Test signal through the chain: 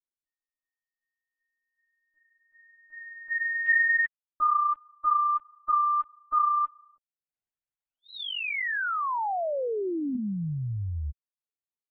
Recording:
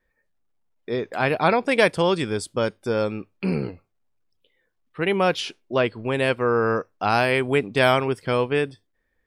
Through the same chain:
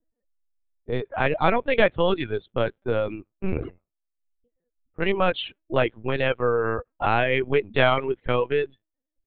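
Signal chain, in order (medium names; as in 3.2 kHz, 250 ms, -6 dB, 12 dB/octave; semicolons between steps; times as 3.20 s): level-controlled noise filter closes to 400 Hz, open at -19.5 dBFS; LPC vocoder at 8 kHz pitch kept; reverb removal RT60 0.74 s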